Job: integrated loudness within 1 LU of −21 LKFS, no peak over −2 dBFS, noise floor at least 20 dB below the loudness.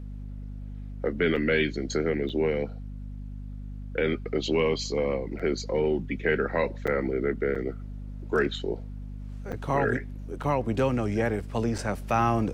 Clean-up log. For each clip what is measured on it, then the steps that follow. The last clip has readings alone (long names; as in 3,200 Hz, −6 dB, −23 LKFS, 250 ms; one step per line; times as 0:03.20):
number of dropouts 8; longest dropout 5.7 ms; mains hum 50 Hz; hum harmonics up to 250 Hz; level of the hum −35 dBFS; integrated loudness −28.0 LKFS; sample peak −11.5 dBFS; target loudness −21.0 LKFS
→ repair the gap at 0:01.36/0:02.29/0:05.39/0:06.87/0:07.55/0:09.52/0:10.43/0:11.78, 5.7 ms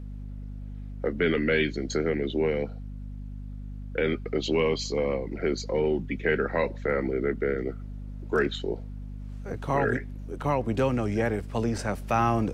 number of dropouts 0; mains hum 50 Hz; hum harmonics up to 250 Hz; level of the hum −35 dBFS
→ mains-hum notches 50/100/150/200/250 Hz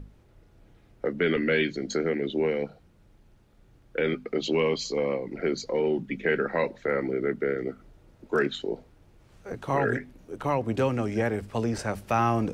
mains hum none found; integrated loudness −28.0 LKFS; sample peak −12.5 dBFS; target loudness −21.0 LKFS
→ level +7 dB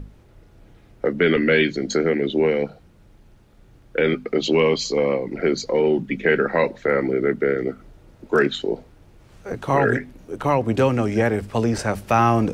integrated loudness −21.0 LKFS; sample peak −5.5 dBFS; background noise floor −52 dBFS